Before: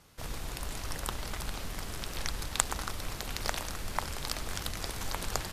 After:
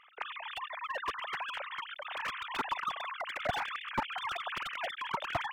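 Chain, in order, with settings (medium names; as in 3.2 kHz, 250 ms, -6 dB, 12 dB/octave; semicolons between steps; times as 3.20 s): formants replaced by sine waves; hum notches 50/100/150/200/250/300/350 Hz; slew-rate limiter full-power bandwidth 45 Hz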